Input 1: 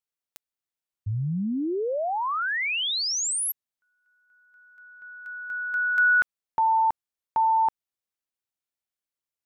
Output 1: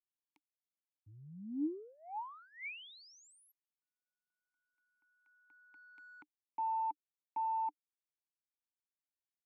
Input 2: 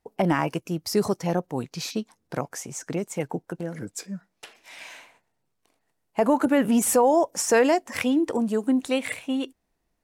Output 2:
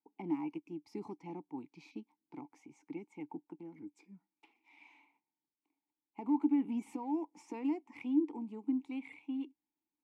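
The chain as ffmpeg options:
-filter_complex "[0:a]aeval=exprs='0.316*(cos(1*acos(clip(val(0)/0.316,-1,1)))-cos(1*PI/2))+0.0141*(cos(3*acos(clip(val(0)/0.316,-1,1)))-cos(3*PI/2))+0.02*(cos(5*acos(clip(val(0)/0.316,-1,1)))-cos(5*PI/2))+0.0126*(cos(7*acos(clip(val(0)/0.316,-1,1)))-cos(7*PI/2))':c=same,acrossover=split=410|5900[a][b][c];[b]acompressor=threshold=-25dB:ratio=2:attack=0.13:release=68:knee=2.83:detection=peak[d];[a][d][c]amix=inputs=3:normalize=0,asplit=3[e][f][g];[e]bandpass=f=300:t=q:w=8,volume=0dB[h];[f]bandpass=f=870:t=q:w=8,volume=-6dB[i];[g]bandpass=f=2.24k:t=q:w=8,volume=-9dB[j];[h][i][j]amix=inputs=3:normalize=0,volume=-4.5dB"

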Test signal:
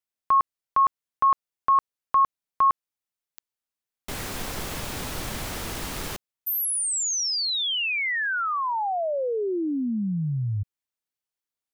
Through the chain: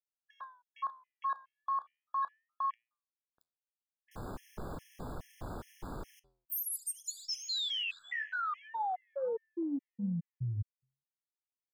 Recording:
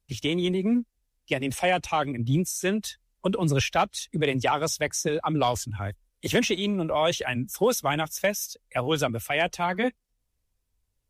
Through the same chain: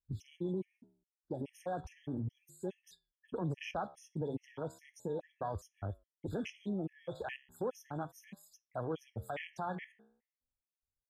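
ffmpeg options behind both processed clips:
-filter_complex "[0:a]acrossover=split=2100[a][b];[b]adelay=30[c];[a][c]amix=inputs=2:normalize=0,acompressor=threshold=-30dB:ratio=4:attack=0.21:release=98:knee=1:detection=peak,afwtdn=0.0126,aeval=exprs='0.0631*(cos(1*acos(clip(val(0)/0.0631,-1,1)))-cos(1*PI/2))+0.00112*(cos(2*acos(clip(val(0)/0.0631,-1,1)))-cos(2*PI/2))+0.00126*(cos(3*acos(clip(val(0)/0.0631,-1,1)))-cos(3*PI/2))+0.000447*(cos(4*acos(clip(val(0)/0.0631,-1,1)))-cos(4*PI/2))':c=same,flanger=delay=8.2:depth=8.3:regen=-84:speed=0.35:shape=triangular,afftfilt=real='re*gt(sin(2*PI*2.4*pts/sr)*(1-2*mod(floor(b*sr/1024/1700),2)),0)':imag='im*gt(sin(2*PI*2.4*pts/sr)*(1-2*mod(floor(b*sr/1024/1700),2)),0)':win_size=1024:overlap=0.75,volume=2.5dB"

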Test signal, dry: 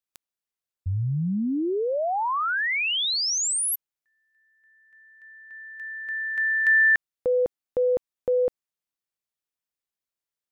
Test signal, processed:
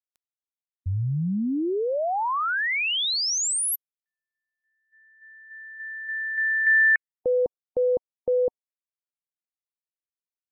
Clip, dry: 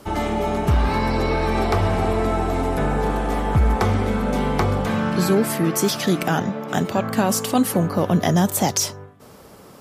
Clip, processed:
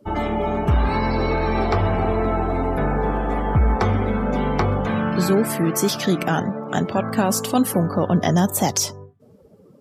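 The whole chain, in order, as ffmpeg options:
-af "afftdn=nr=22:nf=-37"

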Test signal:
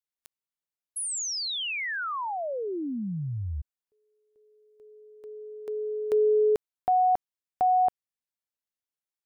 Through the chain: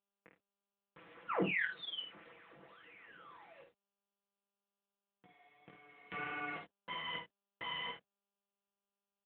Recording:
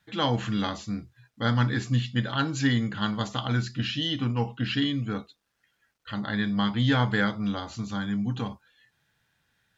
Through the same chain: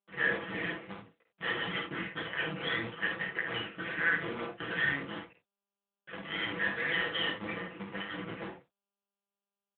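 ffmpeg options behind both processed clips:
-af "afftfilt=real='real(if(lt(b,272),68*(eq(floor(b/68),0)*3+eq(floor(b/68),1)*2+eq(floor(b/68),2)*1+eq(floor(b/68),3)*0)+mod(b,68),b),0)':imag='imag(if(lt(b,272),68*(eq(floor(b/68),0)*3+eq(floor(b/68),1)*2+eq(floor(b/68),2)*1+eq(floor(b/68),3)*0)+mod(b,68),b),0)':win_size=2048:overlap=0.75,agate=range=-45dB:threshold=-52dB:ratio=3:release=31:detection=rms,equalizer=f=840:w=0.86:g=-5,acrusher=bits=5:dc=4:mix=0:aa=0.000001,flanger=delay=16.5:depth=5.1:speed=1.7,highpass=120,equalizer=f=190:t=q:w=4:g=6,equalizer=f=300:t=q:w=4:g=4,equalizer=f=470:t=q:w=4:g=9,equalizer=f=1.2k:t=q:w=4:g=4,equalizer=f=1.9k:t=q:w=4:g=3,lowpass=f=2.7k:w=0.5412,lowpass=f=2.7k:w=1.3066,aecho=1:1:6:0.52,aecho=1:1:51|80:0.501|0.2,volume=4dB" -ar 8000 -c:a libopencore_amrnb -b:a 10200

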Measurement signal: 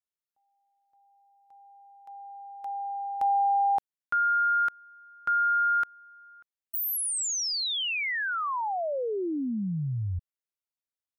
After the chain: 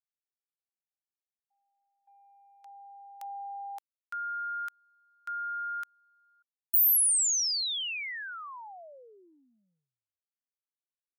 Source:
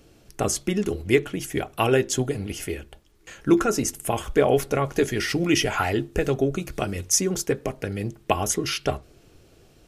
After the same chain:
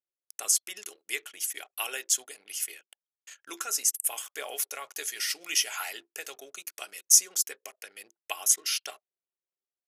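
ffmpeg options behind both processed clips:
-af "highpass=490,anlmdn=0.1,aderivative,volume=3.5dB"

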